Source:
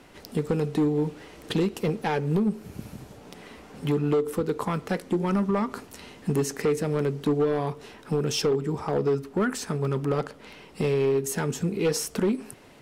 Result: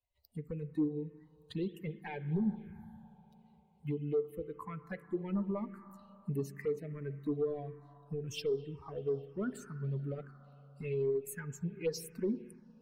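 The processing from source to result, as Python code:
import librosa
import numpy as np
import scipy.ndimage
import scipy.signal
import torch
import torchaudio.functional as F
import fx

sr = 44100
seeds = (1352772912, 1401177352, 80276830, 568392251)

y = fx.bin_expand(x, sr, power=2.0)
y = fx.rev_spring(y, sr, rt60_s=4.0, pass_ms=(36, 58), chirp_ms=70, drr_db=12.5)
y = fx.env_phaser(y, sr, low_hz=280.0, high_hz=2700.0, full_db=-22.5)
y = F.gain(torch.from_numpy(y), -6.0).numpy()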